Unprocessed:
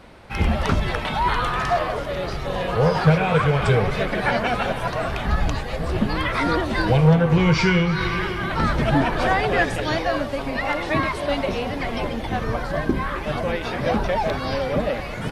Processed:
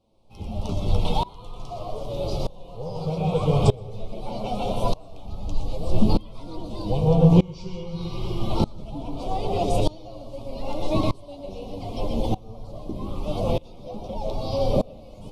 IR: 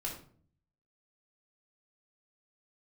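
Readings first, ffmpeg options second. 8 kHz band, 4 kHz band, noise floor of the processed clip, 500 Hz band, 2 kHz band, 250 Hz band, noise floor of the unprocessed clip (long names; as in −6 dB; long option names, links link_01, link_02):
can't be measured, −7.5 dB, −43 dBFS, −4.5 dB, −23.5 dB, −3.0 dB, −30 dBFS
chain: -filter_complex "[0:a]asuperstop=centerf=1700:order=4:qfactor=0.72,asplit=2[link_01][link_02];[link_02]lowshelf=frequency=77:gain=10.5[link_03];[1:a]atrim=start_sample=2205,asetrate=70560,aresample=44100,adelay=117[link_04];[link_03][link_04]afir=irnorm=-1:irlink=0,volume=-4.5dB[link_05];[link_01][link_05]amix=inputs=2:normalize=0,flanger=delay=9:depth=1.5:regen=48:speed=0.48:shape=triangular,aeval=exprs='val(0)*pow(10,-25*if(lt(mod(-0.81*n/s,1),2*abs(-0.81)/1000),1-mod(-0.81*n/s,1)/(2*abs(-0.81)/1000),(mod(-0.81*n/s,1)-2*abs(-0.81)/1000)/(1-2*abs(-0.81)/1000))/20)':channel_layout=same,volume=6.5dB"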